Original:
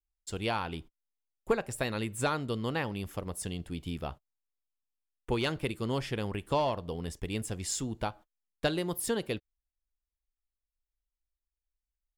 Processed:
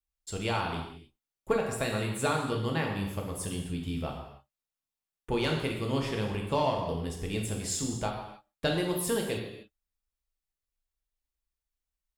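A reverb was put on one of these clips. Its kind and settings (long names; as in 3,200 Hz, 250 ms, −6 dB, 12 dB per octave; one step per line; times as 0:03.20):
reverb whose tail is shaped and stops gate 330 ms falling, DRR 0 dB
level −1 dB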